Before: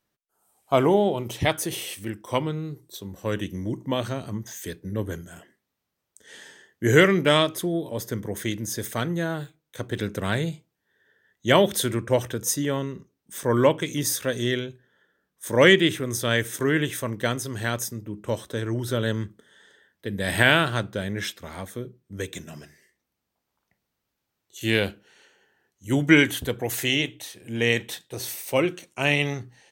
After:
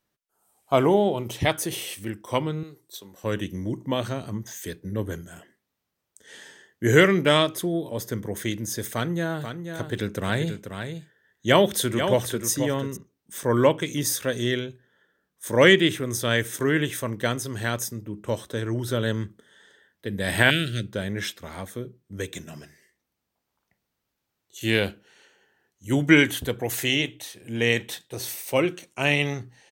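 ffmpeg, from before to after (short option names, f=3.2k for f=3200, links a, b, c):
-filter_complex "[0:a]asettb=1/sr,asplit=3[a][b][c];[a]atrim=end=2.634[d];[b]atrim=start=2.63:end=3.24,asetpts=PTS-STARTPTS,afade=t=in:d=0.004:c=qsin,afade=t=out:st=0.606:d=0.004:c=qsin,highpass=f=670:p=1[e];[c]atrim=start=3.236[f];[d][e]acrossfade=d=0.004:c1=hsin:c2=qsin[g];[g][f]acrossfade=d=0.004:c1=qsin:c2=hsin,asplit=3[h][i][j];[h]afade=t=out:st=9.41:d=0.02[k];[i]aecho=1:1:486:0.398,afade=t=in:st=9.41:d=0.02,afade=t=out:st=12.95:d=0.02[l];[j]afade=t=in:st=12.95:d=0.02[m];[k][l][m]amix=inputs=3:normalize=0,asettb=1/sr,asplit=3[n][o][p];[n]atrim=end=20.504[q];[o]atrim=start=20.5:end=20.93,asetpts=PTS-STARTPTS,afade=t=in:d=0.004:c=qsin,afade=t=out:st=0.426:d=0.004:c=qsin,asuperstop=centerf=910:order=4:qfactor=0.51[r];[p]atrim=start=20.926[s];[q][r]acrossfade=d=0.004:c1=hsin:c2=qsin[t];[t][s]acrossfade=d=0.004:c1=qsin:c2=hsin"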